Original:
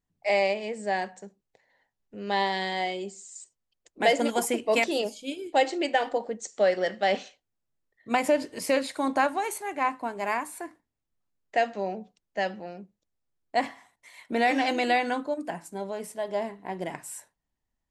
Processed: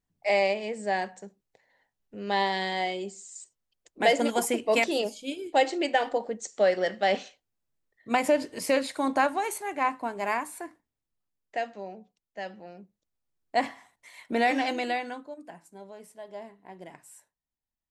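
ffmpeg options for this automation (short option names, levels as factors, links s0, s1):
-af "volume=2.99,afade=t=out:st=10.32:d=1.56:silence=0.354813,afade=t=in:st=12.4:d=1.27:silence=0.334965,afade=t=out:st=14.32:d=0.9:silence=0.251189"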